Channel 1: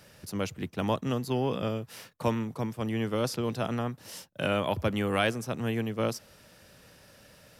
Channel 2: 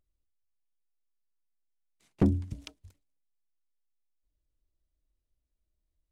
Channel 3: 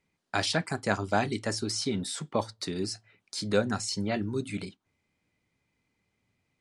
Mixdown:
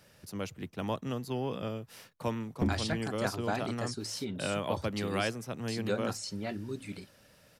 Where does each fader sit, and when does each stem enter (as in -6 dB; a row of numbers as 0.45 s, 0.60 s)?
-5.5 dB, -6.0 dB, -7.0 dB; 0.00 s, 0.40 s, 2.35 s